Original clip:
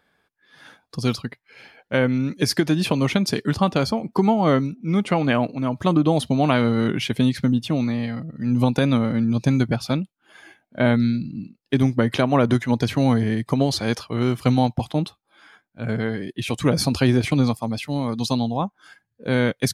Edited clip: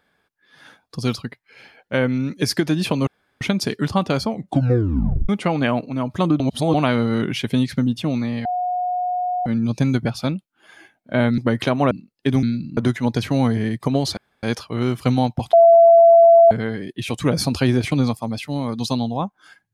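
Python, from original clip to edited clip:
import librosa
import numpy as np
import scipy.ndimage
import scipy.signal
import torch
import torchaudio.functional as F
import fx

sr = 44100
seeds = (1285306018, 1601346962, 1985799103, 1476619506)

y = fx.edit(x, sr, fx.insert_room_tone(at_s=3.07, length_s=0.34),
    fx.tape_stop(start_s=3.96, length_s=0.99),
    fx.reverse_span(start_s=6.06, length_s=0.34),
    fx.bleep(start_s=8.11, length_s=1.01, hz=723.0, db=-19.5),
    fx.swap(start_s=11.04, length_s=0.34, other_s=11.9, other_length_s=0.53),
    fx.insert_room_tone(at_s=13.83, length_s=0.26),
    fx.bleep(start_s=14.93, length_s=0.98, hz=673.0, db=-6.5), tone=tone)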